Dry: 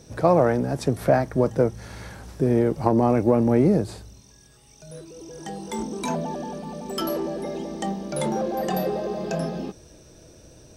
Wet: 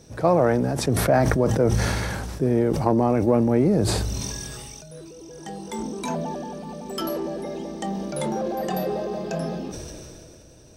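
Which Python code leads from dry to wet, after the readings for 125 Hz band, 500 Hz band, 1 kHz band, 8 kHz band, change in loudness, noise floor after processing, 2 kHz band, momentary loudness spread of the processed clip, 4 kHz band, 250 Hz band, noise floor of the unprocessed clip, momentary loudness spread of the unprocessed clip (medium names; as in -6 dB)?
+2.0 dB, 0.0 dB, 0.0 dB, +7.0 dB, 0.0 dB, -47 dBFS, +4.0 dB, 18 LU, +5.0 dB, 0.0 dB, -52 dBFS, 20 LU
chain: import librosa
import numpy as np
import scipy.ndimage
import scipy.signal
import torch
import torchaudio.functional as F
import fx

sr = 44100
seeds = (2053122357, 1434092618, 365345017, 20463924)

y = fx.sustainer(x, sr, db_per_s=22.0)
y = F.gain(torch.from_numpy(y), -1.5).numpy()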